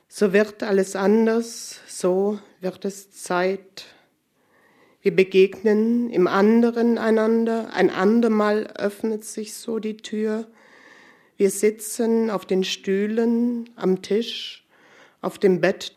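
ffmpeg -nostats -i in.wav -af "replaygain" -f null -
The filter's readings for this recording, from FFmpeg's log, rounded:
track_gain = +1.3 dB
track_peak = 0.490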